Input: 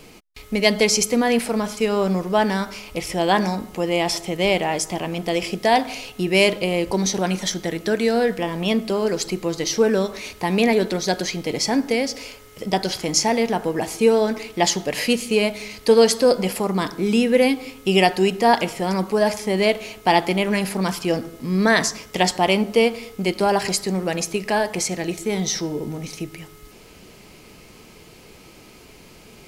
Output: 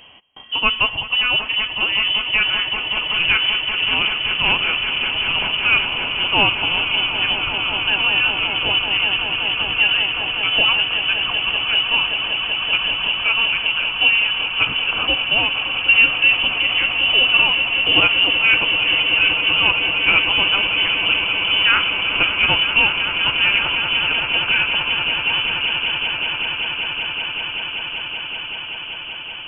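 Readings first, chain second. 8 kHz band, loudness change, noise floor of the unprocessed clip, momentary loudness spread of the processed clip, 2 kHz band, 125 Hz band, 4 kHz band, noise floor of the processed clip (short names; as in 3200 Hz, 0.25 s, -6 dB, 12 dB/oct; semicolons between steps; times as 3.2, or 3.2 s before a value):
under -40 dB, +5.0 dB, -46 dBFS, 7 LU, +11.5 dB, -7.5 dB, +13.0 dB, -30 dBFS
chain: block floating point 5-bit; swelling echo 0.191 s, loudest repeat 8, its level -12 dB; inverted band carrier 3200 Hz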